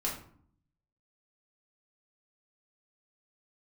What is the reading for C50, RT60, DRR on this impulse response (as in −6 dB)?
6.0 dB, 0.55 s, −4.0 dB